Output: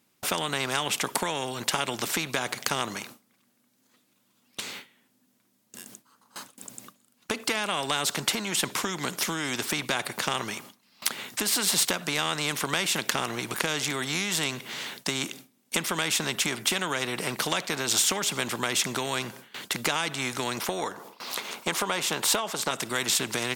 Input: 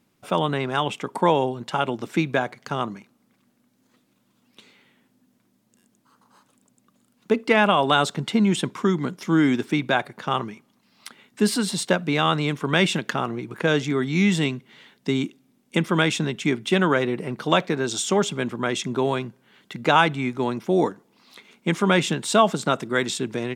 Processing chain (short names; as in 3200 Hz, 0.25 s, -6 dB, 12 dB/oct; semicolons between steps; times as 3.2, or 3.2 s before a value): 20.6–22.71 graphic EQ 125/250/500/1000/2000/8000 Hz -4/-4/+6/+9/-3/-3 dB; gate with hold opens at -45 dBFS; compressor 12:1, threshold -24 dBFS, peak gain reduction 20 dB; tilt +2 dB/oct; maximiser +10.5 dB; spectral compressor 2:1; gain -1 dB